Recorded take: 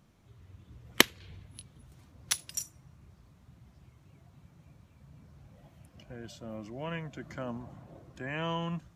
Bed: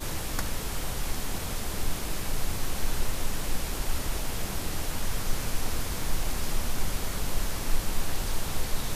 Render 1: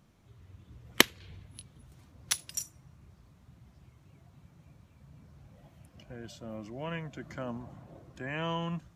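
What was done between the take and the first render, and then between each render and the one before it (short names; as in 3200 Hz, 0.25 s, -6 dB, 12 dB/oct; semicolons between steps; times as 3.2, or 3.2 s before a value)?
nothing audible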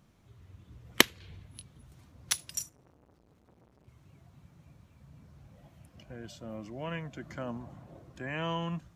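2.69–3.88 core saturation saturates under 920 Hz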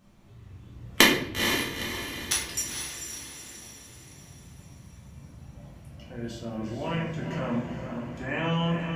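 on a send: diffused feedback echo 0.467 s, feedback 48%, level -6 dB; on the sum: shoebox room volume 110 m³, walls mixed, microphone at 1.5 m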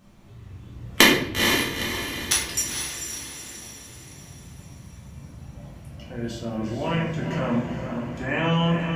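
gain +5 dB; limiter -2 dBFS, peak gain reduction 3 dB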